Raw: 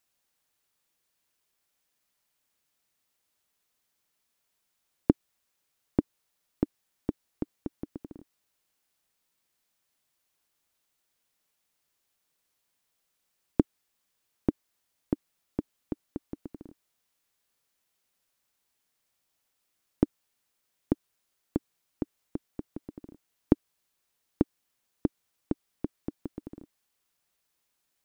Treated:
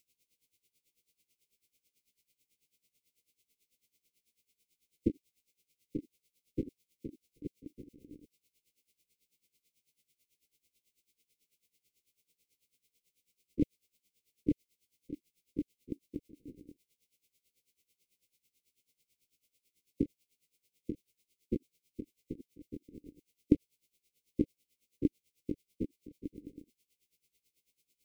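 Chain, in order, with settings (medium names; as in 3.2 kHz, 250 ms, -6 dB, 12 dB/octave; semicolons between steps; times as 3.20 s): spectrogram pixelated in time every 50 ms; brick-wall FIR band-stop 540–2000 Hz; logarithmic tremolo 9.1 Hz, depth 18 dB; trim +7 dB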